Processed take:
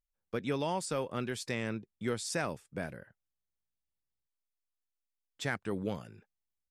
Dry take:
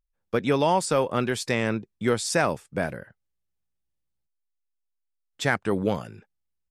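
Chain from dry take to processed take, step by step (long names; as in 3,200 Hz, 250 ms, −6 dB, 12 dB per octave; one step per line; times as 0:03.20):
dynamic equaliser 810 Hz, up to −4 dB, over −34 dBFS, Q 0.74
level −9 dB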